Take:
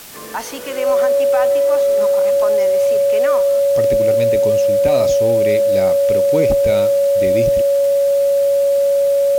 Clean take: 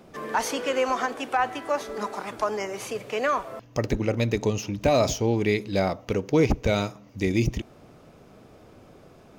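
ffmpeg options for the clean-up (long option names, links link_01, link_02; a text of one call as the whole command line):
ffmpeg -i in.wav -af "adeclick=threshold=4,bandreject=frequency=560:width=30,afwtdn=0.016" out.wav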